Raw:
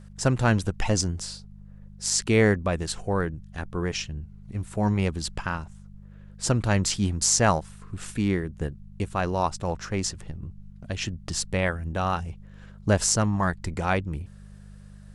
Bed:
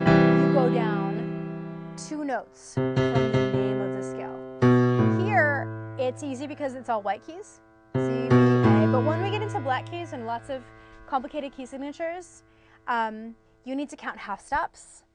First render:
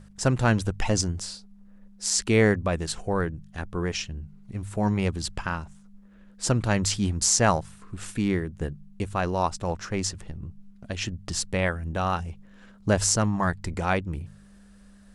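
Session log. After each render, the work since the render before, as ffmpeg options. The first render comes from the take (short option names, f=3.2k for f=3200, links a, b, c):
-af "bandreject=f=50:t=h:w=4,bandreject=f=100:t=h:w=4,bandreject=f=150:t=h:w=4"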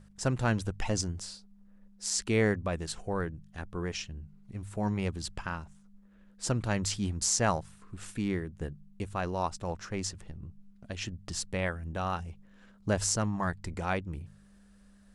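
-af "volume=-6.5dB"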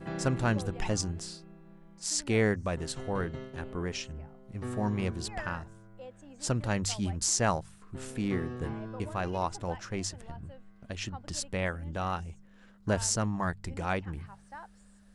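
-filter_complex "[1:a]volume=-19.5dB[a];[0:a][a]amix=inputs=2:normalize=0"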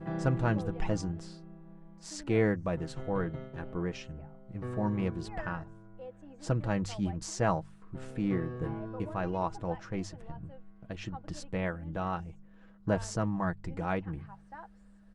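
-af "lowpass=f=1.3k:p=1,aecho=1:1:6.2:0.45"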